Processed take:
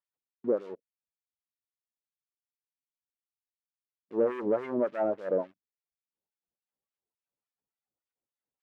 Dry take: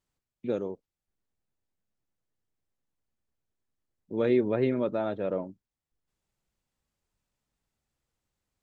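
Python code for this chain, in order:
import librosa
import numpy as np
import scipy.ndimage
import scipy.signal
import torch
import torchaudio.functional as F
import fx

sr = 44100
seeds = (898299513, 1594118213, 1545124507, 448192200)

y = fx.spec_gate(x, sr, threshold_db=-20, keep='strong')
y = fx.leveller(y, sr, passes=2)
y = fx.filter_lfo_bandpass(y, sr, shape='sine', hz=3.5, low_hz=420.0, high_hz=3000.0, q=1.1)
y = y * 10.0 ** (-1.0 / 20.0)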